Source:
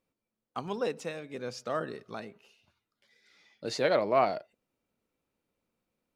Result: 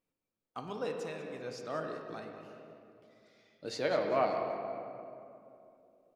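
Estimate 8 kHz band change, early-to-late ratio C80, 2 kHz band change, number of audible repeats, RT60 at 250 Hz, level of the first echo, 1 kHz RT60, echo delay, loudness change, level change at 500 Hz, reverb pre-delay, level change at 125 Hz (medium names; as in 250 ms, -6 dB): -5.5 dB, 4.5 dB, -4.5 dB, 2, 3.1 s, -13.5 dB, 2.5 s, 194 ms, -4.5 dB, -3.5 dB, 3 ms, -4.0 dB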